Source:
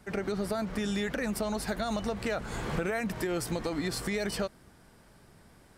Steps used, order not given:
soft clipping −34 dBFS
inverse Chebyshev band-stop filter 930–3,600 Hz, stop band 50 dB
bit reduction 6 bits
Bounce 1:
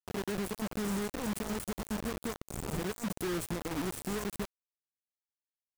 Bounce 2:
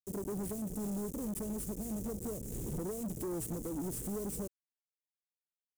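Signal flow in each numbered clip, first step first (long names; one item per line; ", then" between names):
inverse Chebyshev band-stop filter, then soft clipping, then bit reduction
bit reduction, then inverse Chebyshev band-stop filter, then soft clipping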